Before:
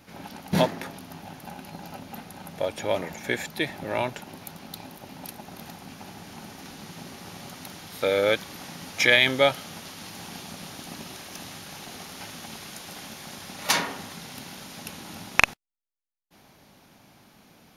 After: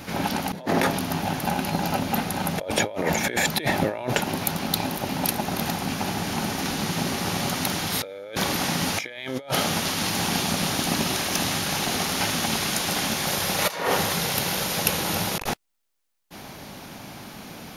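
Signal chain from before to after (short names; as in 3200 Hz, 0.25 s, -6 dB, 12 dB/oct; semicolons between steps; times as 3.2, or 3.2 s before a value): dynamic EQ 540 Hz, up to +5 dB, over -35 dBFS, Q 0.79; negative-ratio compressor -35 dBFS, ratio -1; 13.26–15.49 thirty-one-band EQ 250 Hz -11 dB, 500 Hz +6 dB, 12500 Hz +6 dB; gain +8.5 dB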